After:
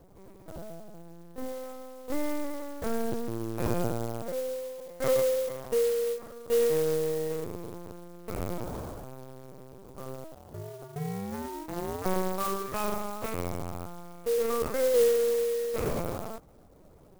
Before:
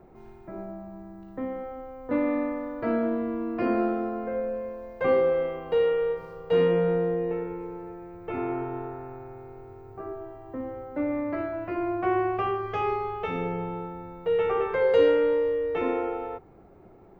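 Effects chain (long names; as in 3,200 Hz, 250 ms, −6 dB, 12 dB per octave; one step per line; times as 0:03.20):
linear-prediction vocoder at 8 kHz pitch kept
0:10.34–0:12.04: ring modulation 79 Hz → 460 Hz
converter with an unsteady clock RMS 0.058 ms
level −3 dB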